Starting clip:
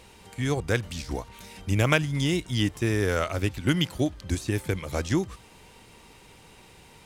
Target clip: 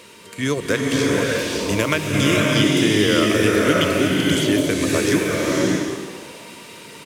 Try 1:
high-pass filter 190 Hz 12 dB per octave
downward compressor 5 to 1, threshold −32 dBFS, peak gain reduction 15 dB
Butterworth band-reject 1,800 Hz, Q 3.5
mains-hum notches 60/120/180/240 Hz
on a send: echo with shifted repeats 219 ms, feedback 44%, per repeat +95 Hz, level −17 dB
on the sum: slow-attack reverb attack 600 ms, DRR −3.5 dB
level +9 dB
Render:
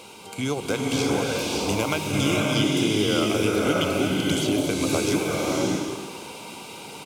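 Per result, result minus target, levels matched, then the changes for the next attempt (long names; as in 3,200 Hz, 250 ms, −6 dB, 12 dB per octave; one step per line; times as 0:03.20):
downward compressor: peak gain reduction +5.5 dB; 2,000 Hz band −2.5 dB
change: downward compressor 5 to 1, threshold −25 dBFS, peak gain reduction 9.5 dB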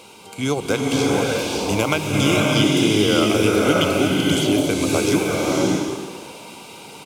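2,000 Hz band −2.5 dB
change: Butterworth band-reject 790 Hz, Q 3.5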